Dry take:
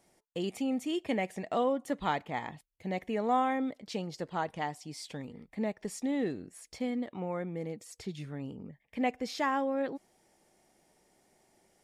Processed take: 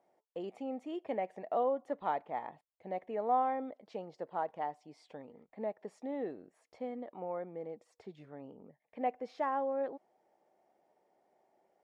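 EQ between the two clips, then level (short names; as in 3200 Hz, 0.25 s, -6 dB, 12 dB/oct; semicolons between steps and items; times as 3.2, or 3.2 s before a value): band-pass 670 Hz, Q 1.4; 0.0 dB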